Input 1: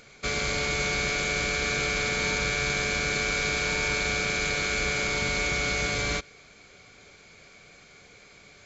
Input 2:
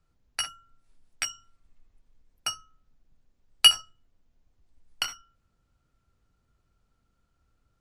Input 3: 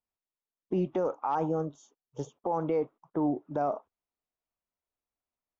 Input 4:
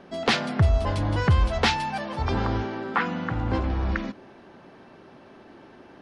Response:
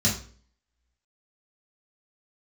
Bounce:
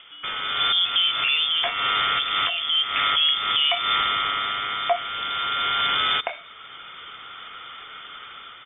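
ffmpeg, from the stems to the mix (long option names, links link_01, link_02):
-filter_complex "[0:a]acompressor=threshold=-29dB:ratio=6,volume=1.5dB[link_01];[1:a]adelay=1250,volume=-2dB[link_02];[2:a]volume=-3.5dB,asplit=2[link_03][link_04];[3:a]acompressor=mode=upward:threshold=-21dB:ratio=2.5,volume=-16.5dB[link_05];[link_04]apad=whole_len=381694[link_06];[link_01][link_06]sidechaincompress=threshold=-43dB:ratio=4:attack=5.2:release=211[link_07];[link_07][link_02][link_03][link_05]amix=inputs=4:normalize=0,dynaudnorm=framelen=140:gausssize=9:maxgain=12dB,lowpass=frequency=3100:width_type=q:width=0.5098,lowpass=frequency=3100:width_type=q:width=0.6013,lowpass=frequency=3100:width_type=q:width=0.9,lowpass=frequency=3100:width_type=q:width=2.563,afreqshift=-3600,alimiter=limit=-11dB:level=0:latency=1:release=442"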